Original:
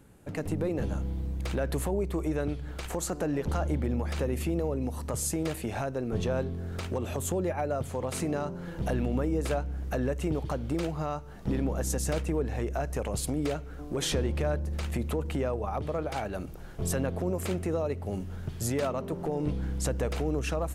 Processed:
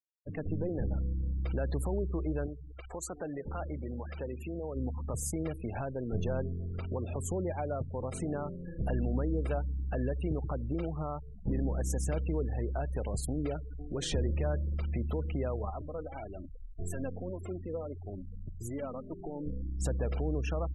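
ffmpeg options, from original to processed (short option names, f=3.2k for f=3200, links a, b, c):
-filter_complex "[0:a]asettb=1/sr,asplit=3[a][b][c];[a]atrim=end=2.464[d];[b]atrim=start=2.46:end=4.76,asetpts=PTS-STARTPTS,afade=t=in:d=0.004:c=qsin,afade=t=out:st=2.296:d=0.004:c=qsin,lowshelf=f=320:g=-9.5[e];[c]atrim=start=4.756[f];[d][e]acrossfade=d=0.004:c1=hsin:c2=qsin[g];[g][f]acrossfade=d=0.004:c1=qsin:c2=hsin,asettb=1/sr,asplit=3[h][i][j];[h]atrim=end=15.704[k];[i]atrim=start=15.7:end=19.8,asetpts=PTS-STARTPTS,afade=t=in:d=0.004:c=qsin,afade=t=out:st=4.096:d=0.004:c=qsin,flanger=delay=2.8:depth=1.3:regen=37:speed=1.7:shape=sinusoidal[l];[j]atrim=start=19.796[m];[k][l]acrossfade=d=0.004:c1=hsin:c2=qsin[n];[n][m]acrossfade=d=0.004:c1=qsin:c2=hsin,afftfilt=real='re*gte(hypot(re,im),0.02)':imag='im*gte(hypot(re,im),0.02)':win_size=1024:overlap=0.75,lowshelf=f=84:g=8.5,volume=-5dB"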